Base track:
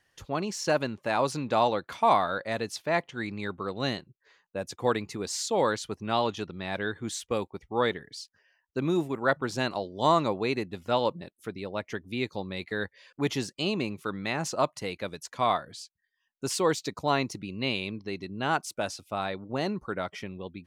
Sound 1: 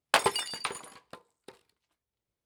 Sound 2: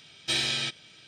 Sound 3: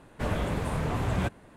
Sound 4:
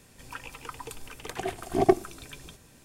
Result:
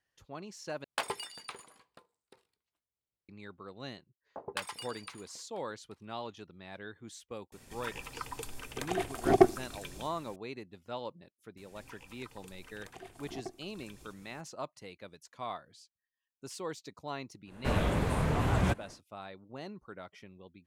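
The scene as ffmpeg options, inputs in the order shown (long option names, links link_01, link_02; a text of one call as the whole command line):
ffmpeg -i bed.wav -i cue0.wav -i cue1.wav -i cue2.wav -i cue3.wav -filter_complex "[1:a]asplit=2[link_01][link_02];[4:a]asplit=2[link_03][link_04];[0:a]volume=-14dB[link_05];[link_02]acrossover=split=790[link_06][link_07];[link_07]adelay=210[link_08];[link_06][link_08]amix=inputs=2:normalize=0[link_09];[link_04]acompressor=threshold=-46dB:ratio=2:attack=4.9:release=186:knee=1:detection=rms[link_10];[link_05]asplit=2[link_11][link_12];[link_11]atrim=end=0.844[link_13];[link_01]atrim=end=2.45,asetpts=PTS-STARTPTS,volume=-10.5dB[link_14];[link_12]atrim=start=3.286[link_15];[link_09]atrim=end=2.45,asetpts=PTS-STARTPTS,volume=-12.5dB,afade=type=in:duration=0.004:curve=hsin,afade=type=out:start_time=2.446:duration=0.004:curve=hsin,adelay=4220[link_16];[link_03]atrim=end=2.84,asetpts=PTS-STARTPTS,volume=-1dB,afade=type=in:duration=0.004:curve=hsin,afade=type=out:start_time=2.836:duration=0.004:curve=hsin,adelay=7520[link_17];[link_10]atrim=end=2.84,asetpts=PTS-STARTPTS,volume=-6dB,afade=type=in:duration=0.004:curve=hsin,afade=type=out:start_time=2.836:duration=0.004:curve=hsin,adelay=11570[link_18];[3:a]atrim=end=1.56,asetpts=PTS-STARTPTS,afade=type=in:duration=0.1,afade=type=out:start_time=1.46:duration=0.1,adelay=17450[link_19];[link_13][link_14]acrossfade=duration=0.004:curve1=hsin:curve2=hsin[link_20];[link_20][link_15]acrossfade=duration=0.004:curve1=hsin:curve2=hsin[link_21];[link_21][link_16][link_17][link_18][link_19]amix=inputs=5:normalize=0" out.wav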